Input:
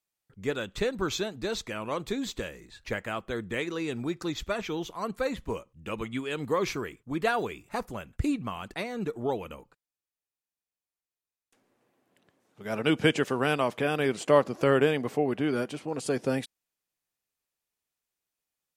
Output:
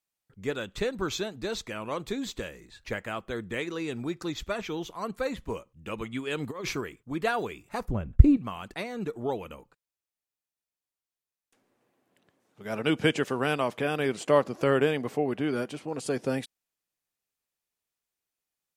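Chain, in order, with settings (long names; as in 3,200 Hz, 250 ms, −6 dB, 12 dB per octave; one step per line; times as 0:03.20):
0:06.27–0:06.81: compressor whose output falls as the input rises −30 dBFS, ratio −0.5
0:07.88–0:08.37: spectral tilt −4.5 dB per octave
level −1 dB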